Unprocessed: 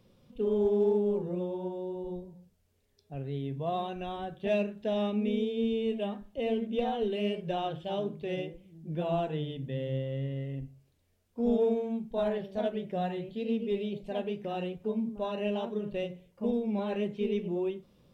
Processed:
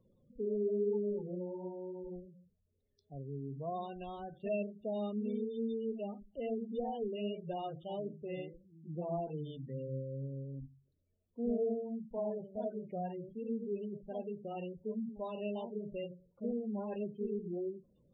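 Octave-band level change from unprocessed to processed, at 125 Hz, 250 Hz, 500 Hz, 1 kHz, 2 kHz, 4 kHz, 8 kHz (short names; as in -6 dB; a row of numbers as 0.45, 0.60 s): -7.0 dB, -7.0 dB, -7.0 dB, -7.5 dB, -12.5 dB, -13.5 dB, n/a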